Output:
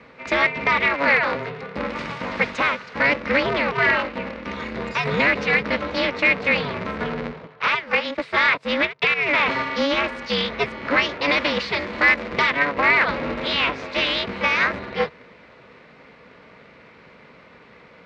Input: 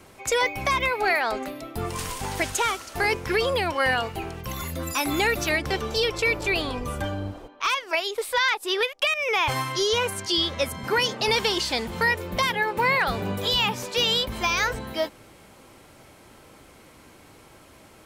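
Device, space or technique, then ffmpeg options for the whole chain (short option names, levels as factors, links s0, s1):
ring modulator pedal into a guitar cabinet: -filter_complex "[0:a]aeval=exprs='val(0)*sgn(sin(2*PI*140*n/s))':c=same,highpass=88,equalizer=f=93:t=q:w=4:g=-9,equalizer=f=340:t=q:w=4:g=-7,equalizer=f=490:t=q:w=4:g=4,equalizer=f=750:t=q:w=4:g=-7,equalizer=f=2100:t=q:w=4:g=5,equalizer=f=3200:t=q:w=4:g=-6,lowpass=f=3800:w=0.5412,lowpass=f=3800:w=1.3066,asettb=1/sr,asplit=3[s0][s1][s2];[s0]atrim=end=11.794[s3];[s1]atrim=start=11.79:end=12.5,asetpts=PTS-STARTPTS,afade=t=in:d=0.004:c=qsin,afade=t=out:st=0.706:d=0.004:c=qsin,highshelf=f=5000:g=6[s4];[s2]atrim=start=12.496[s5];[s3][s4]acrossfade=d=0.004:c1=hsin:c2=qsin[s6];[s6][s5]acrossfade=d=0.004:c1=qsin:c2=hsin,volume=1.58"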